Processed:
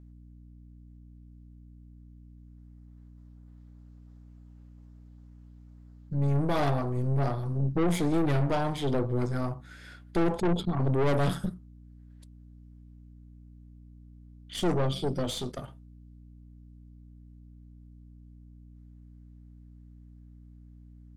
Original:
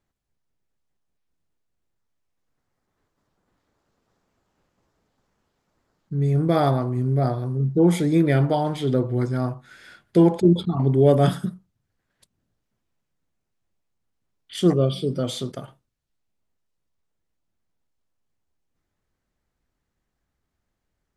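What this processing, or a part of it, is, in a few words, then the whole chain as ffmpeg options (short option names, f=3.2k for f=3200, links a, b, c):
valve amplifier with mains hum: -af "aeval=exprs='(tanh(14.1*val(0)+0.65)-tanh(0.65))/14.1':c=same,aeval=exprs='val(0)+0.00355*(sin(2*PI*60*n/s)+sin(2*PI*2*60*n/s)/2+sin(2*PI*3*60*n/s)/3+sin(2*PI*4*60*n/s)/4+sin(2*PI*5*60*n/s)/5)':c=same"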